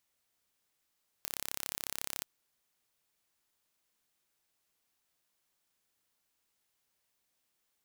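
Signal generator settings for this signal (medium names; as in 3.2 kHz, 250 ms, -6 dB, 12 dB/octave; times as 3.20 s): pulse train 34 per s, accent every 0, -9.5 dBFS 0.99 s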